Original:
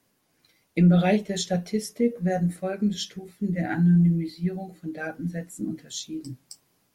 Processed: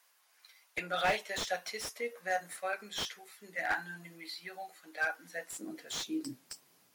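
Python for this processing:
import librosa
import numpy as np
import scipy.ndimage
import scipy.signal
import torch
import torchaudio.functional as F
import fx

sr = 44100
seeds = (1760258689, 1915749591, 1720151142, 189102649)

y = fx.filter_sweep_highpass(x, sr, from_hz=970.0, to_hz=120.0, start_s=5.19, end_s=6.89, q=1.1)
y = fx.low_shelf(y, sr, hz=390.0, db=-10.0)
y = fx.slew_limit(y, sr, full_power_hz=52.0)
y = y * 10.0 ** (3.0 / 20.0)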